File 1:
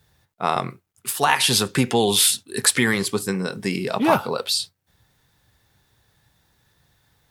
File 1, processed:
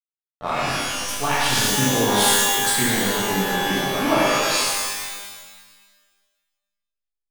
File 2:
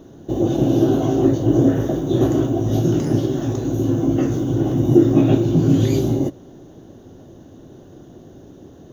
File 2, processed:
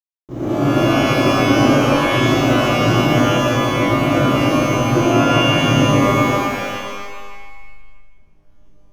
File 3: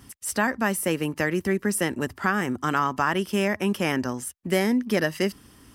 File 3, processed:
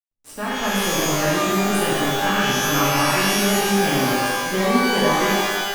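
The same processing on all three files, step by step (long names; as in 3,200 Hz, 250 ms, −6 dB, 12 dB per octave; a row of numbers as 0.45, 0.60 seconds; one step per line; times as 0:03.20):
automatic gain control gain up to 5.5 dB
slack as between gear wheels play −21 dBFS
reverb with rising layers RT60 1.4 s, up +12 semitones, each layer −2 dB, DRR −7.5 dB
level −10.5 dB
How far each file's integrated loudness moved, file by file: +1.0, +3.0, +6.5 LU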